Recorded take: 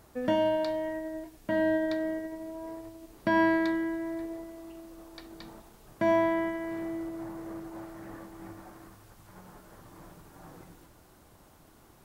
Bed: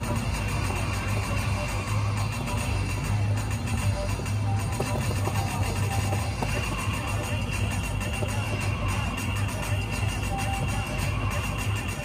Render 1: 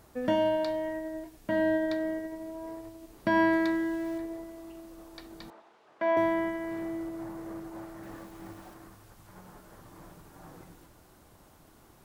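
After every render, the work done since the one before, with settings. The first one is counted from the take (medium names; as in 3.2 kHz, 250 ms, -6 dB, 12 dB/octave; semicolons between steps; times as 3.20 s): 3.52–4.18 s: jump at every zero crossing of -43 dBFS; 5.50–6.17 s: band-pass 490–3000 Hz; 8.03–8.74 s: small samples zeroed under -52.5 dBFS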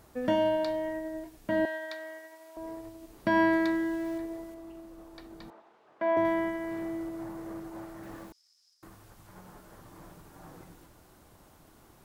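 1.65–2.57 s: high-pass 1 kHz; 4.54–6.25 s: treble shelf 2.2 kHz -6.5 dB; 8.32–8.83 s: ladder band-pass 5.3 kHz, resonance 85%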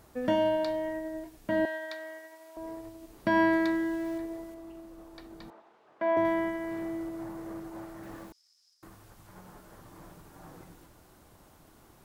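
no audible change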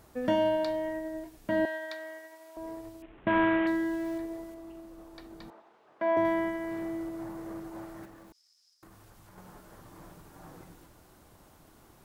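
3.02–3.67 s: CVSD coder 16 kbps; 8.05–9.38 s: compression 2.5:1, threshold -51 dBFS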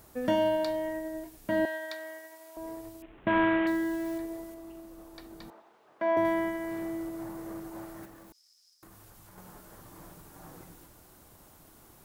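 treble shelf 8 kHz +10 dB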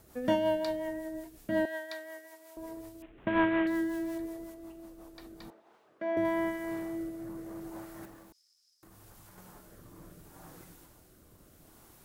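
rotary cabinet horn 5.5 Hz, later 0.75 Hz, at 5.14 s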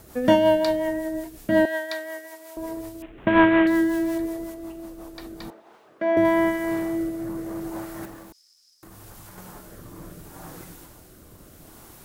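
trim +10.5 dB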